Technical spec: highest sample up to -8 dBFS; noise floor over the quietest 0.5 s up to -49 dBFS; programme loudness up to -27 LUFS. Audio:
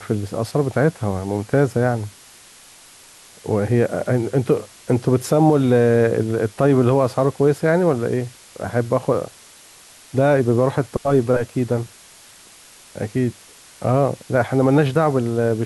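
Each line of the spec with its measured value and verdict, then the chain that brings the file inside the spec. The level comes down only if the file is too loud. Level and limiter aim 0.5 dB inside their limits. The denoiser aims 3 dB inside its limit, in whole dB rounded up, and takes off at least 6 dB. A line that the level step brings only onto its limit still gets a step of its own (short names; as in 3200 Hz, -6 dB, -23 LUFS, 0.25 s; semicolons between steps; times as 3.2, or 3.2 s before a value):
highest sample -5.5 dBFS: fail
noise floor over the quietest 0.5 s -46 dBFS: fail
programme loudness -19.5 LUFS: fail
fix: gain -8 dB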